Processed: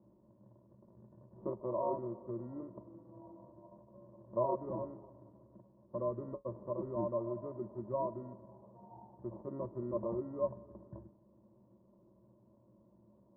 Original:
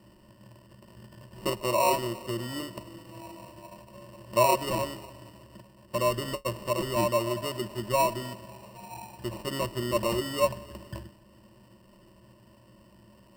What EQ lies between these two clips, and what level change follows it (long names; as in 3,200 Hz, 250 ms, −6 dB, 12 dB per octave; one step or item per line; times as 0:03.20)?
Gaussian smoothing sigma 10 samples
high-pass filter 200 Hz 6 dB per octave
high-frequency loss of the air 300 metres
−4.5 dB